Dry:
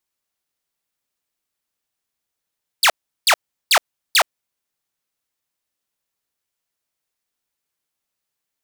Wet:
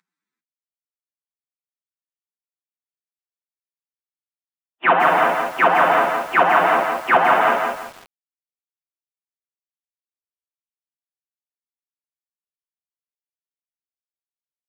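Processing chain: CVSD 16 kbps; non-linear reverb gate 0.25 s flat, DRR 1 dB; in parallel at +2 dB: limiter -16.5 dBFS, peak gain reduction 9.5 dB; on the sum: steep high-pass 160 Hz 72 dB/oct; time stretch by phase-locked vocoder 1.7×; lo-fi delay 0.169 s, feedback 35%, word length 7-bit, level -3.5 dB; gain +3.5 dB

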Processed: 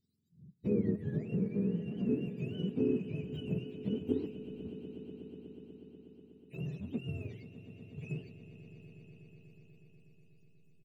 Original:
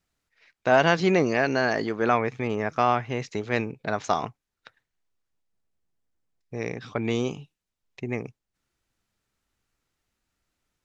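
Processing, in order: spectrum mirrored in octaves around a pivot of 560 Hz; Chebyshev band-stop 300–3600 Hz, order 3; comb 4.7 ms, depth 44%; in parallel at -11 dB: backlash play -40 dBFS; on the sum: compressor 2:1, threshold -40 dBFS, peak gain reduction 13.5 dB; band shelf 830 Hz +11.5 dB 2.8 oct; on a send: swelling echo 0.122 s, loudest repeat 5, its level -17.5 dB

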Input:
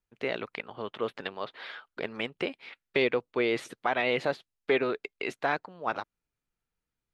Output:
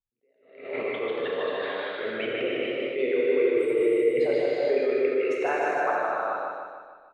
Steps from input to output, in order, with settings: formant sharpening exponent 2; gate -53 dBFS, range -8 dB; spectral repair 3.58–4.13, 330–7500 Hz before; on a send: feedback echo 0.152 s, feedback 53%, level -4 dB; on the sum: non-linear reverb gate 0.49 s flat, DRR -5.5 dB; in parallel at 0 dB: compressor, threshold -25 dBFS, peak gain reduction 12 dB; on the sum: attack slew limiter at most 100 dB/s; gain -5.5 dB

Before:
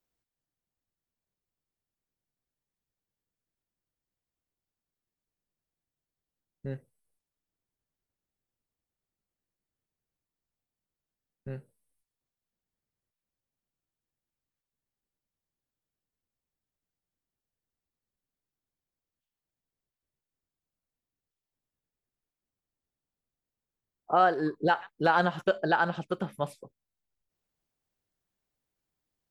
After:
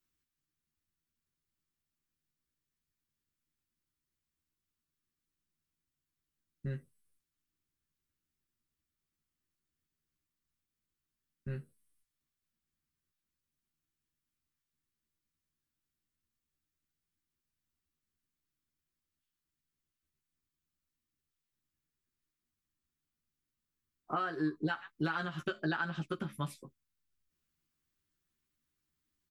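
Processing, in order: band shelf 630 Hz -11 dB 1.3 oct; compressor 6:1, threshold -33 dBFS, peak gain reduction 10.5 dB; doubler 13 ms -4 dB

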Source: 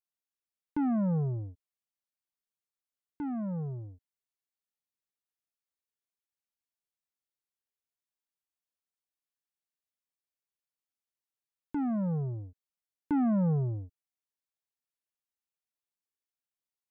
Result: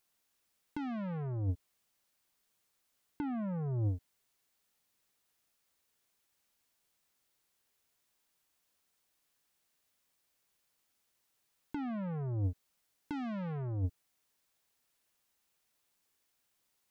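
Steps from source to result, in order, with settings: soft clip -34.5 dBFS, distortion -10 dB; negative-ratio compressor -44 dBFS, ratio -1; gain +8.5 dB

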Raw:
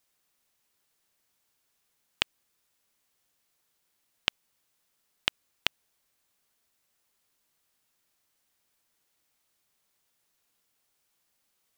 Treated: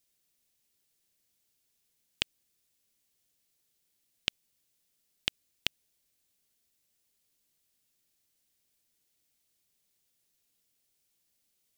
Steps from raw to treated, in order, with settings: bell 1100 Hz -12 dB 1.8 oct

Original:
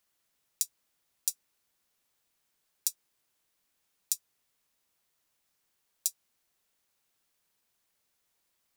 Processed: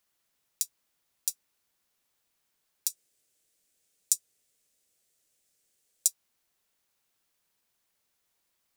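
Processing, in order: 2.9–6.08 graphic EQ 500/1000/8000 Hz +6/-9/+8 dB

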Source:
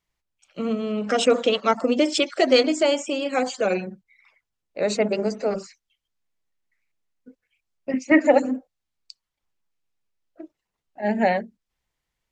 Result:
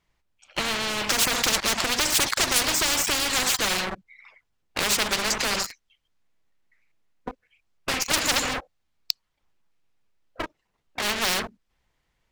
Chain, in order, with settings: high shelf 5300 Hz -9.5 dB; sample leveller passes 3; spectral compressor 10:1; gain +1.5 dB

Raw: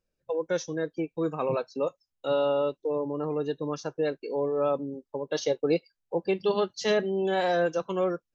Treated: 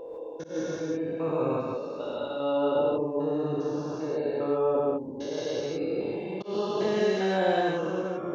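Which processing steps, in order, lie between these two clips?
stepped spectrum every 0.4 s; non-linear reverb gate 0.19 s rising, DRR -2 dB; auto swell 0.134 s

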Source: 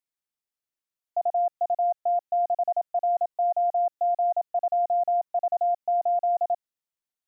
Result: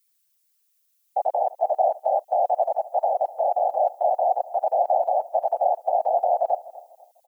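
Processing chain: tilt +5 dB/oct; whisperiser; feedback echo 0.248 s, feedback 34%, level -18.5 dB; gain +5 dB

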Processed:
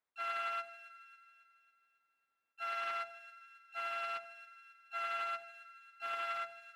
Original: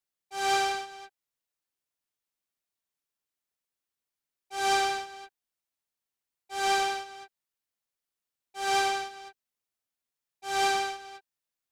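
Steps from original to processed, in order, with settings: HPF 130 Hz 6 dB/oct; low shelf 480 Hz -6 dB; reverse; compressor 6:1, threshold -40 dBFS, peak gain reduction 16 dB; reverse; limiter -37 dBFS, peak gain reduction 7 dB; polynomial smoothing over 65 samples; harmoniser +3 st -13 dB, +12 st -8 dB; on a send: split-band echo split 720 Hz, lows 0.125 s, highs 0.475 s, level -12.5 dB; on the sum: speed mistake 45 rpm record played at 78 rpm; Doppler distortion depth 0.13 ms; gain +10 dB

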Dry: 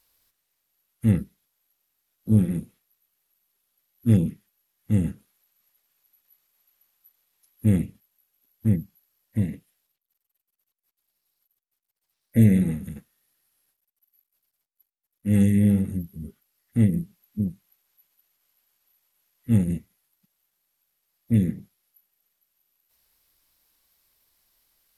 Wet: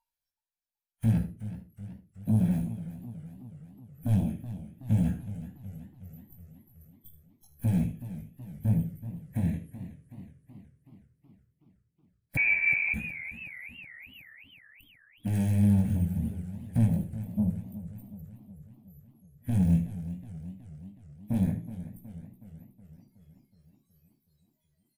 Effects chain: tracing distortion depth 0.31 ms; spectral noise reduction 29 dB; in parallel at +2 dB: compressor, threshold -31 dBFS, peak gain reduction 18 dB; on the sum: limiter -15.5 dBFS, peak gain reduction 9 dB; soft clip -19.5 dBFS, distortion -16 dB; chorus 0.78 Hz, delay 16.5 ms, depth 7.7 ms; echo 78 ms -14.5 dB; reverb RT60 0.30 s, pre-delay 45 ms, DRR 15.5 dB; 12.37–12.94 inverted band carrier 2500 Hz; warbling echo 0.373 s, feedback 61%, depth 108 cents, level -13.5 dB

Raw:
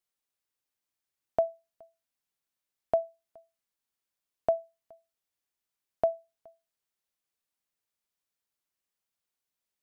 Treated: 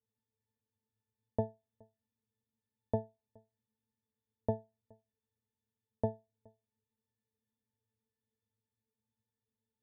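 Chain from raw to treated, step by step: tilt shelf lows +9 dB, about 660 Hz; octave resonator A, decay 0.21 s; gain +15.5 dB

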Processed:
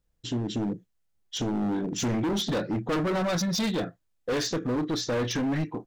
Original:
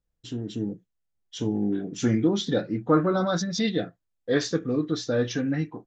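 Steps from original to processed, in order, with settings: in parallel at -0.5 dB: compressor, threshold -30 dBFS, peak gain reduction 14 dB; on the sum: overloaded stage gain 24.5 dB

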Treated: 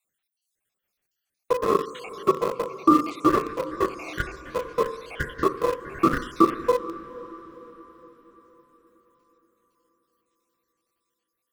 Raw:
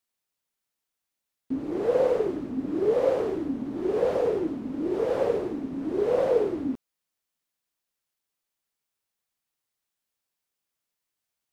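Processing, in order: random spectral dropouts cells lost 81%; on a send at -7 dB: Chebyshev band-pass 210–1300 Hz, order 3 + reverb RT60 0.70 s, pre-delay 3 ms; on the sum: dynamic EQ 330 Hz, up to -4 dB, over -45 dBFS, Q 6.8; ring modulator 750 Hz; diffused feedback echo 0.47 s, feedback 50%, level -15 dB; in parallel at -9 dB: sample gate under -34 dBFS; on the sum: bell 940 Hz -12.5 dB 0.25 oct; maximiser +18 dB; gain -4.5 dB

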